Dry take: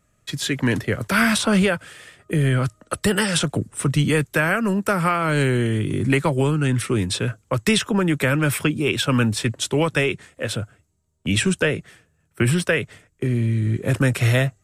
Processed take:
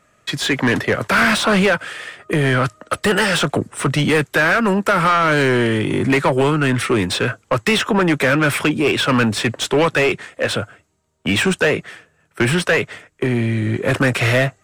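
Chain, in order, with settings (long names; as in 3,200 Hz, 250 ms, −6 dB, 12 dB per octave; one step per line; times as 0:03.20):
mid-hump overdrive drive 21 dB, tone 2,200 Hz, clips at −6 dBFS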